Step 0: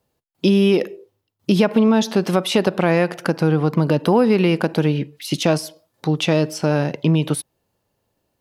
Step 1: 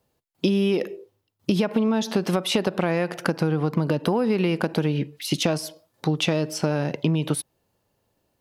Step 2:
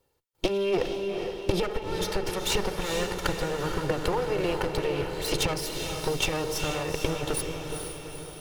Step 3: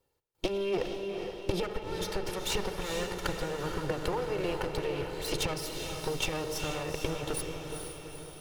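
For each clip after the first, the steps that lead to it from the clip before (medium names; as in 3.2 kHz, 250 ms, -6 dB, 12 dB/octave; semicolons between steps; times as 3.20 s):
compression, threshold -18 dBFS, peak gain reduction 8 dB
comb filter that takes the minimum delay 2.2 ms; echo that smears into a reverb 450 ms, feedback 56%, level -5 dB
reverberation RT60 0.85 s, pre-delay 65 ms, DRR 15 dB; trim -5 dB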